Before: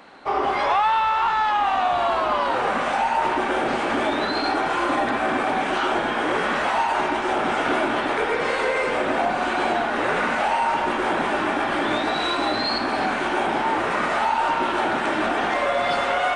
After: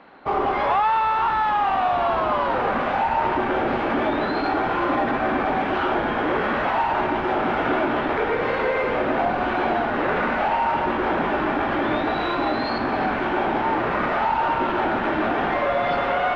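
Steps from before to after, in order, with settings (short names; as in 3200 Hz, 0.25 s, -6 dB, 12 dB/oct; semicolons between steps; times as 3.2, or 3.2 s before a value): in parallel at -10.5 dB: Schmitt trigger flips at -23 dBFS; on the sum: air absorption 310 m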